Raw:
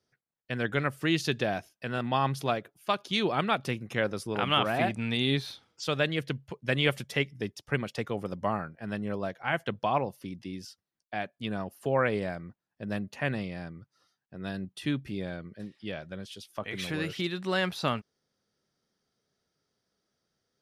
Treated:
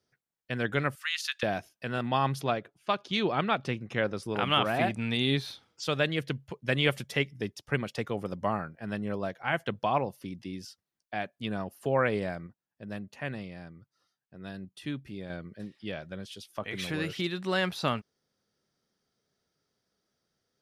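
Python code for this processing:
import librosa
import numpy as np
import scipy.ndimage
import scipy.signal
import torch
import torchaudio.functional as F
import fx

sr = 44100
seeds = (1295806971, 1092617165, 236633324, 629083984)

y = fx.steep_highpass(x, sr, hz=1200.0, slope=36, at=(0.95, 1.43))
y = fx.air_absorb(y, sr, metres=71.0, at=(2.41, 4.23))
y = fx.edit(y, sr, fx.clip_gain(start_s=12.47, length_s=2.83, db=-5.5), tone=tone)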